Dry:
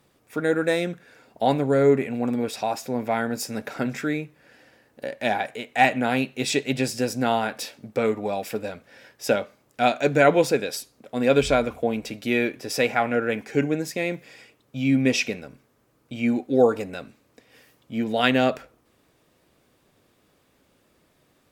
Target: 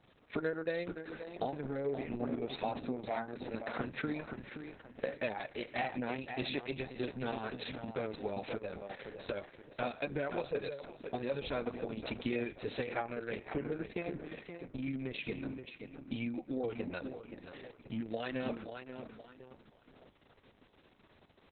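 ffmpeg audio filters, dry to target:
ffmpeg -i in.wav -filter_complex "[0:a]asplit=3[link_01][link_02][link_03];[link_01]afade=type=out:start_time=3.09:duration=0.02[link_04];[link_02]highpass=280,afade=type=in:start_time=3.09:duration=0.02,afade=type=out:start_time=3.53:duration=0.02[link_05];[link_03]afade=type=in:start_time=3.53:duration=0.02[link_06];[link_04][link_05][link_06]amix=inputs=3:normalize=0,asplit=3[link_07][link_08][link_09];[link_07]afade=type=out:start_time=13.38:duration=0.02[link_10];[link_08]highshelf=frequency=2000:gain=-4.5,afade=type=in:start_time=13.38:duration=0.02,afade=type=out:start_time=14.86:duration=0.02[link_11];[link_09]afade=type=in:start_time=14.86:duration=0.02[link_12];[link_10][link_11][link_12]amix=inputs=3:normalize=0,alimiter=limit=-10.5dB:level=0:latency=1:release=211,acompressor=threshold=-34dB:ratio=4,asplit=2[link_13][link_14];[link_14]adelay=525,lowpass=frequency=3500:poles=1,volume=-7.5dB,asplit=2[link_15][link_16];[link_16]adelay=525,lowpass=frequency=3500:poles=1,volume=0.36,asplit=2[link_17][link_18];[link_18]adelay=525,lowpass=frequency=3500:poles=1,volume=0.36,asplit=2[link_19][link_20];[link_20]adelay=525,lowpass=frequency=3500:poles=1,volume=0.36[link_21];[link_15][link_17][link_19][link_21]amix=inputs=4:normalize=0[link_22];[link_13][link_22]amix=inputs=2:normalize=0" -ar 48000 -c:a libopus -b:a 6k out.opus

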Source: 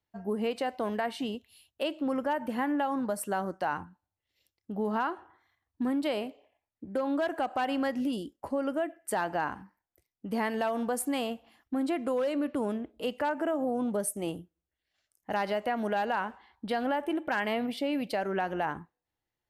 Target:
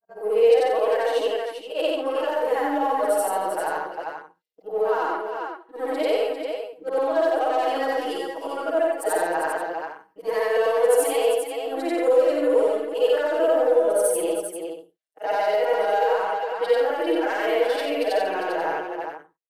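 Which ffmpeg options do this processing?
ffmpeg -i in.wav -filter_complex "[0:a]afftfilt=real='re':imag='-im':win_size=8192:overlap=0.75,asplit=2[link_01][link_02];[link_02]asoftclip=type=hard:threshold=-32.5dB,volume=-11.5dB[link_03];[link_01][link_03]amix=inputs=2:normalize=0,agate=range=-25dB:threshold=-55dB:ratio=16:detection=peak,aeval=exprs='0.0891*(cos(1*acos(clip(val(0)/0.0891,-1,1)))-cos(1*PI/2))+0.00251*(cos(7*acos(clip(val(0)/0.0891,-1,1)))-cos(7*PI/2))+0.001*(cos(8*acos(clip(val(0)/0.0891,-1,1)))-cos(8*PI/2))':channel_layout=same,aecho=1:1:52|310|397:0.501|0.211|0.376,acrossover=split=330|4900[link_04][link_05][link_06];[link_05]alimiter=level_in=3.5dB:limit=-24dB:level=0:latency=1,volume=-3.5dB[link_07];[link_04][link_07][link_06]amix=inputs=3:normalize=0,lowshelf=frequency=300:width_type=q:width=3:gain=-14,aecho=1:1:6.3:0.91,volume=6.5dB" out.wav

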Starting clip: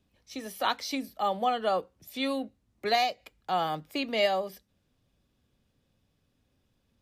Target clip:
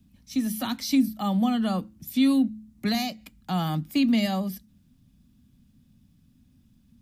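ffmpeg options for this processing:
ffmpeg -i in.wav -filter_complex "[0:a]lowshelf=frequency=320:width_type=q:width=3:gain=11.5,bandreject=frequency=108.1:width_type=h:width=4,bandreject=frequency=216.2:width_type=h:width=4,bandreject=frequency=324.3:width_type=h:width=4,acrossover=split=380|5200[link_01][link_02][link_03];[link_02]alimiter=limit=-24dB:level=0:latency=1:release=74[link_04];[link_01][link_04][link_03]amix=inputs=3:normalize=0,crystalizer=i=1.5:c=0" out.wav

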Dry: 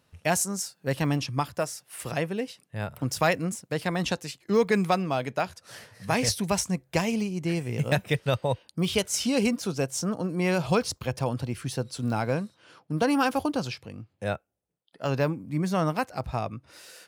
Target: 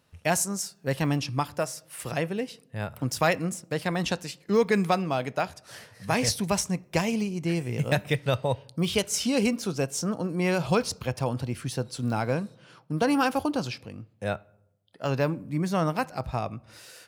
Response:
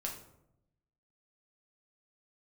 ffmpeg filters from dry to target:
-filter_complex "[0:a]asplit=2[link_01][link_02];[1:a]atrim=start_sample=2205,lowpass=5100,adelay=24[link_03];[link_02][link_03]afir=irnorm=-1:irlink=0,volume=-20dB[link_04];[link_01][link_04]amix=inputs=2:normalize=0"

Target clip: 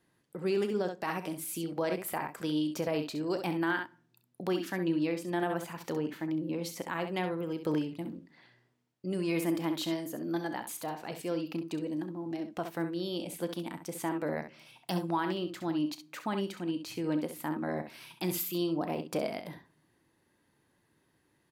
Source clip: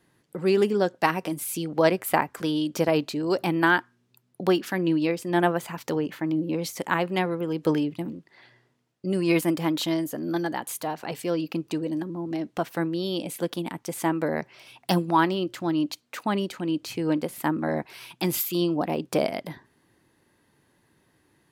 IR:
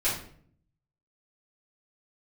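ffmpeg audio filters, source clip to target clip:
-filter_complex "[0:a]aecho=1:1:33|66:0.158|0.335,alimiter=limit=-14dB:level=0:latency=1:release=48,asplit=2[link_01][link_02];[1:a]atrim=start_sample=2205[link_03];[link_02][link_03]afir=irnorm=-1:irlink=0,volume=-28.5dB[link_04];[link_01][link_04]amix=inputs=2:normalize=0,volume=-7.5dB"

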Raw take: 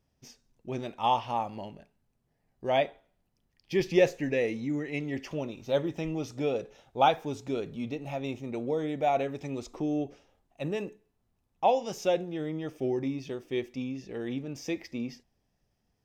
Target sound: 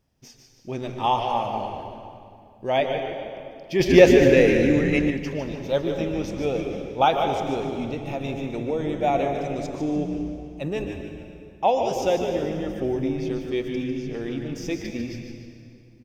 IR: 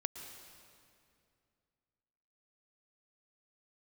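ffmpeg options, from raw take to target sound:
-filter_complex "[0:a]asplit=5[link_01][link_02][link_03][link_04][link_05];[link_02]adelay=149,afreqshift=-120,volume=-8dB[link_06];[link_03]adelay=298,afreqshift=-240,volume=-16.9dB[link_07];[link_04]adelay=447,afreqshift=-360,volume=-25.7dB[link_08];[link_05]adelay=596,afreqshift=-480,volume=-34.6dB[link_09];[link_01][link_06][link_07][link_08][link_09]amix=inputs=5:normalize=0[link_10];[1:a]atrim=start_sample=2205[link_11];[link_10][link_11]afir=irnorm=-1:irlink=0,asplit=3[link_12][link_13][link_14];[link_12]afade=type=out:start_time=3.79:duration=0.02[link_15];[link_13]acontrast=72,afade=type=in:start_time=3.79:duration=0.02,afade=type=out:start_time=5.09:duration=0.02[link_16];[link_14]afade=type=in:start_time=5.09:duration=0.02[link_17];[link_15][link_16][link_17]amix=inputs=3:normalize=0,volume=5dB"

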